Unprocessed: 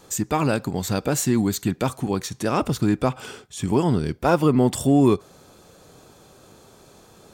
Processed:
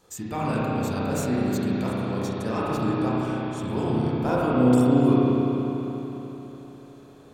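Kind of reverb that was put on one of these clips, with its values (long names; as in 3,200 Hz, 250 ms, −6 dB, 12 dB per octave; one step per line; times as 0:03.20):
spring reverb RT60 3.9 s, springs 32/36 ms, chirp 30 ms, DRR −7.5 dB
level −11 dB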